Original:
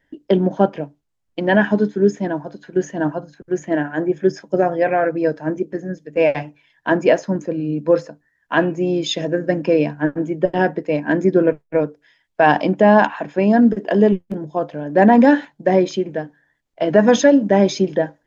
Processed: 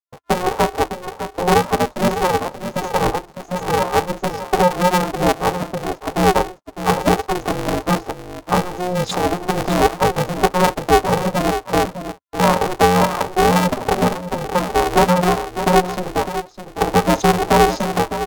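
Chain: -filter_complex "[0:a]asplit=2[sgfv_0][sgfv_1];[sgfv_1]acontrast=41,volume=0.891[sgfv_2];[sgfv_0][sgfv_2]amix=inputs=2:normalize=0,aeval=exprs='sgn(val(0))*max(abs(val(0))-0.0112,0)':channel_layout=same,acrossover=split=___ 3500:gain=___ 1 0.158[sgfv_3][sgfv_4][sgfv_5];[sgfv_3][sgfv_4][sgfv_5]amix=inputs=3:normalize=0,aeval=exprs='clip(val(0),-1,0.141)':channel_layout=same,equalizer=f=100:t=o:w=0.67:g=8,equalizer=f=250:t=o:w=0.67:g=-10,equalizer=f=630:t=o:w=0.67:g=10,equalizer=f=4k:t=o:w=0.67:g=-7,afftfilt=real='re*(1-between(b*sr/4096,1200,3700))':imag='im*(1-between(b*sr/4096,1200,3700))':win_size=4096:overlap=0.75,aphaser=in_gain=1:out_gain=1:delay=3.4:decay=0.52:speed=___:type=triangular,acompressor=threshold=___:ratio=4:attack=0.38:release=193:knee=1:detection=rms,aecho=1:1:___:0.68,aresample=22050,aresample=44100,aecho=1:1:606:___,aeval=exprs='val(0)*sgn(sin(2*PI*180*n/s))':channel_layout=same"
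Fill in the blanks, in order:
560, 0.251, 0.93, 0.251, 6.7, 0.316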